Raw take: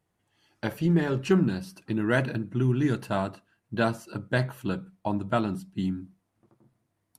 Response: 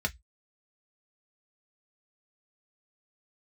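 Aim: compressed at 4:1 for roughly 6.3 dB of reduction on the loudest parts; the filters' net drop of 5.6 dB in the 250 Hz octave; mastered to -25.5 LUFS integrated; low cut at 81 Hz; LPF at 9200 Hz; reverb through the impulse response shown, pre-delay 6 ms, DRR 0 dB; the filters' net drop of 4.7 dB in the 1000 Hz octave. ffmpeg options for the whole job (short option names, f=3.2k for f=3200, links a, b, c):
-filter_complex "[0:a]highpass=81,lowpass=9.2k,equalizer=f=250:t=o:g=-8,equalizer=f=1k:t=o:g=-6.5,acompressor=threshold=-29dB:ratio=4,asplit=2[a][b];[1:a]atrim=start_sample=2205,adelay=6[c];[b][c]afir=irnorm=-1:irlink=0,volume=-6.5dB[d];[a][d]amix=inputs=2:normalize=0,volume=8dB"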